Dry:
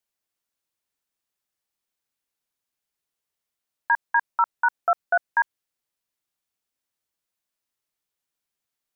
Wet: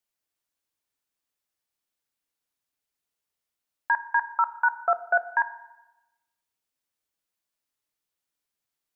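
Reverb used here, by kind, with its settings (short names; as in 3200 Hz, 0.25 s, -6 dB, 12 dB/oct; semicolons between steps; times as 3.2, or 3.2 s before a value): FDN reverb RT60 1 s, low-frequency decay 1.1×, high-frequency decay 0.95×, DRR 11 dB; gain -1.5 dB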